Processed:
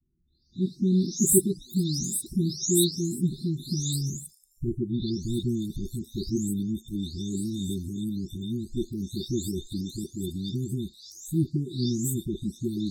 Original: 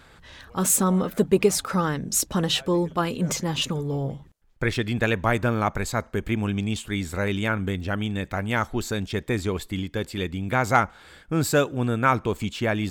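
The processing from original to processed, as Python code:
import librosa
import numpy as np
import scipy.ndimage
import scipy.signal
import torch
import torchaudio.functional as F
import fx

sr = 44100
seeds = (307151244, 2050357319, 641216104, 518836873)

y = fx.spec_delay(x, sr, highs='late', ms=617)
y = fx.noise_reduce_blind(y, sr, reduce_db=18)
y = fx.brickwall_bandstop(y, sr, low_hz=400.0, high_hz=3500.0)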